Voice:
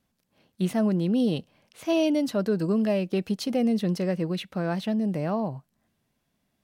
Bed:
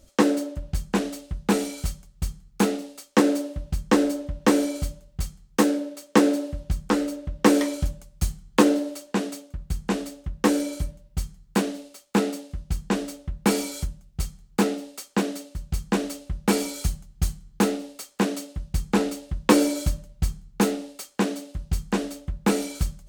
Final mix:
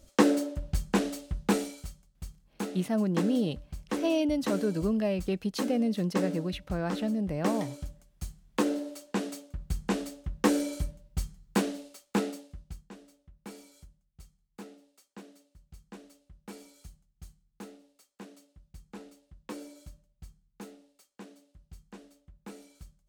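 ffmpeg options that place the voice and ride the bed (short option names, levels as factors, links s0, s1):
-filter_complex "[0:a]adelay=2150,volume=0.631[s0];[1:a]volume=2.24,afade=t=out:st=1.39:d=0.45:silence=0.281838,afade=t=in:st=8.35:d=1.15:silence=0.334965,afade=t=out:st=11.88:d=1.02:silence=0.1[s1];[s0][s1]amix=inputs=2:normalize=0"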